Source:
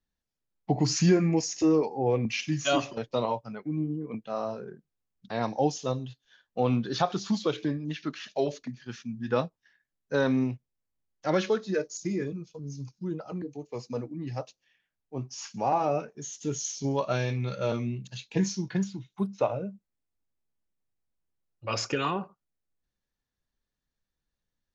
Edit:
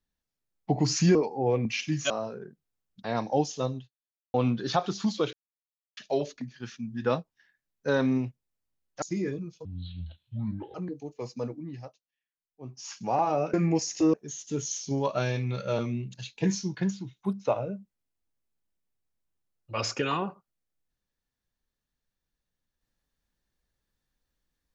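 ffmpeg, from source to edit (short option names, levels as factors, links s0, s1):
-filter_complex "[0:a]asplit=13[s0][s1][s2][s3][s4][s5][s6][s7][s8][s9][s10][s11][s12];[s0]atrim=end=1.152[s13];[s1]atrim=start=1.748:end=2.702[s14];[s2]atrim=start=4.358:end=6.6,asetpts=PTS-STARTPTS,afade=t=out:st=1.682:d=0.56:c=exp[s15];[s3]atrim=start=6.6:end=7.59,asetpts=PTS-STARTPTS,afade=t=in:d=0.004:c=hsin,afade=t=out:st=0.986:d=0.004:c=hsin[s16];[s4]atrim=start=7.59:end=8.23,asetpts=PTS-STARTPTS,volume=0[s17];[s5]atrim=start=8.23:end=11.282,asetpts=PTS-STARTPTS,afade=t=in:d=0.004:c=hsin[s18];[s6]atrim=start=11.958:end=12.594[s19];[s7]atrim=start=12.59:end=13.28,asetpts=PTS-STARTPTS,asetrate=27783,aresample=44100[s20];[s8]atrim=start=13.276:end=14.51,asetpts=PTS-STARTPTS,afade=t=out:st=0.794:d=0.44:silence=0.0891251[s21];[s9]atrim=start=14.51:end=15.03,asetpts=PTS-STARTPTS,volume=0.0891[s22];[s10]atrim=start=15.03:end=16.072,asetpts=PTS-STARTPTS,afade=t=in:d=0.44:silence=0.0891251[s23];[s11]atrim=start=1.148:end=1.752[s24];[s12]atrim=start=16.068[s25];[s13][s14]acrossfade=d=0.004:c1=hsin:c2=hsin[s26];[s15][s16][s17][s18]concat=n=4:v=0:a=1[s27];[s26][s27]acrossfade=d=0.004:c1=hsin:c2=hsin[s28];[s28][s19]acrossfade=d=0.004:c1=hsin:c2=hsin[s29];[s29][s20]acrossfade=d=0.004:c1=hsin:c2=hsin[s30];[s21][s22][s23]concat=n=3:v=0:a=1[s31];[s30][s31]acrossfade=d=0.004:c1=hsin:c2=hsin[s32];[s32][s24]acrossfade=d=0.004:c1=hsin:c2=hsin[s33];[s33][s25]acrossfade=d=0.004:c1=hsin:c2=hsin"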